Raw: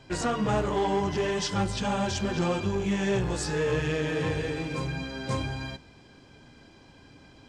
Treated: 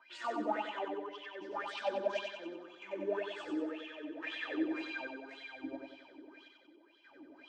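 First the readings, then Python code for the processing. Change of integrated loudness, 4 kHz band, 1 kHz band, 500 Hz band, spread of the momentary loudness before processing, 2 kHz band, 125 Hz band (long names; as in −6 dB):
−11.0 dB, −11.5 dB, −9.0 dB, −10.0 dB, 6 LU, −8.0 dB, below −30 dB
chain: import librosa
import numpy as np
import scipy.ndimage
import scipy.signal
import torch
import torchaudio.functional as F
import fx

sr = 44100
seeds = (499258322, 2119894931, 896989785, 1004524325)

y = fx.high_shelf(x, sr, hz=8100.0, db=-5.5)
y = fx.hum_notches(y, sr, base_hz=50, count=4)
y = fx.rider(y, sr, range_db=10, speed_s=2.0)
y = 10.0 ** (-23.5 / 20.0) * np.tanh(y / 10.0 ** (-23.5 / 20.0))
y = fx.low_shelf(y, sr, hz=150.0, db=-10.5)
y = y + 0.7 * np.pad(y, (int(3.3 * sr / 1000.0), 0))[:len(y)]
y = fx.chopper(y, sr, hz=0.71, depth_pct=65, duty_pct=60)
y = fx.wah_lfo(y, sr, hz=1.9, low_hz=300.0, high_hz=3400.0, q=7.9)
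y = fx.echo_feedback(y, sr, ms=93, feedback_pct=49, wet_db=-4.0)
y = y * 10.0 ** (4.5 / 20.0)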